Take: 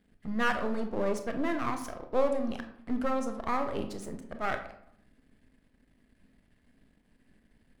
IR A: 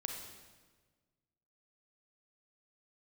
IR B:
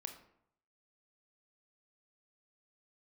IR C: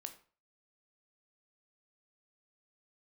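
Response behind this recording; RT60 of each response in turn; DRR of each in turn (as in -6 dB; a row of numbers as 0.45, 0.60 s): B; 1.4, 0.70, 0.40 s; 2.5, 5.5, 7.0 dB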